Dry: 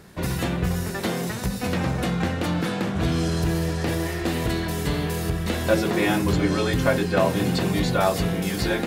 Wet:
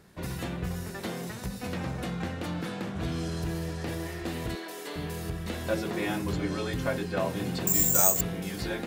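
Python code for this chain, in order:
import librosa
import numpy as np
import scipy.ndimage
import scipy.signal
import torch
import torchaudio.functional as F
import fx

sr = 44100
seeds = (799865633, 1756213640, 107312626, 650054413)

y = fx.highpass(x, sr, hz=320.0, slope=24, at=(4.55, 4.96))
y = fx.resample_bad(y, sr, factor=6, down='filtered', up='zero_stuff', at=(7.67, 8.21))
y = y * librosa.db_to_amplitude(-9.0)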